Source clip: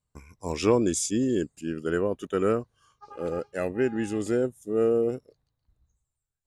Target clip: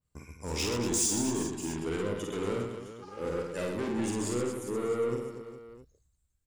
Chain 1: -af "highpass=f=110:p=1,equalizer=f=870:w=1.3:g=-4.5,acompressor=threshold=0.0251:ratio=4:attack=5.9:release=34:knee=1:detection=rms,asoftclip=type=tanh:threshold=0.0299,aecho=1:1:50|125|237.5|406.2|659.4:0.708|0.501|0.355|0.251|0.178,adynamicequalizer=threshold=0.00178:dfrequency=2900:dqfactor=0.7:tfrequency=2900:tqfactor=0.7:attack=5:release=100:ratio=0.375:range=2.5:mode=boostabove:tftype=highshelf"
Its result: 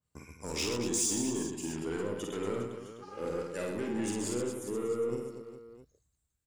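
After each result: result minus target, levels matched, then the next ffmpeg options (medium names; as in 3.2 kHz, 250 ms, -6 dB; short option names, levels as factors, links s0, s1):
compression: peak gain reduction +5 dB; 125 Hz band -2.5 dB
-af "highpass=f=110:p=1,equalizer=f=870:w=1.3:g=-4.5,acompressor=threshold=0.0562:ratio=4:attack=5.9:release=34:knee=1:detection=rms,asoftclip=type=tanh:threshold=0.0299,aecho=1:1:50|125|237.5|406.2|659.4:0.708|0.501|0.355|0.251|0.178,adynamicequalizer=threshold=0.00178:dfrequency=2900:dqfactor=0.7:tfrequency=2900:tqfactor=0.7:attack=5:release=100:ratio=0.375:range=2.5:mode=boostabove:tftype=highshelf"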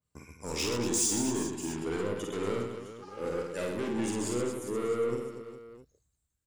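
125 Hz band -2.0 dB
-af "equalizer=f=870:w=1.3:g=-4.5,acompressor=threshold=0.0562:ratio=4:attack=5.9:release=34:knee=1:detection=rms,asoftclip=type=tanh:threshold=0.0299,aecho=1:1:50|125|237.5|406.2|659.4:0.708|0.501|0.355|0.251|0.178,adynamicequalizer=threshold=0.00178:dfrequency=2900:dqfactor=0.7:tfrequency=2900:tqfactor=0.7:attack=5:release=100:ratio=0.375:range=2.5:mode=boostabove:tftype=highshelf"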